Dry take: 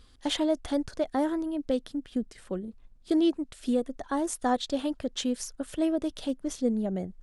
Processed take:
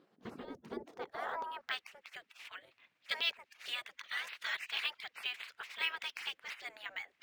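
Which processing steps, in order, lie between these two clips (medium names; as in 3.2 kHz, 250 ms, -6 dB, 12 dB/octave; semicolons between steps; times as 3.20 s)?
spectral gate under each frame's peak -25 dB weak; band-pass sweep 250 Hz -> 2.3 kHz, 0.65–1.89 s; decimation joined by straight lines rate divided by 2×; trim +17.5 dB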